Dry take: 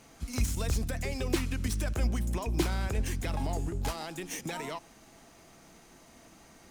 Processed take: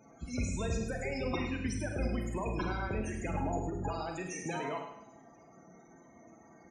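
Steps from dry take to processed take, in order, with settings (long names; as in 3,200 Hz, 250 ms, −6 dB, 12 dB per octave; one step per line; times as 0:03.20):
high-pass filter 120 Hz 6 dB per octave
wrap-around overflow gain 22.5 dB
spectral peaks only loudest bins 32
repeating echo 105 ms, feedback 36%, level −9 dB
four-comb reverb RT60 0.49 s, combs from 33 ms, DRR 4 dB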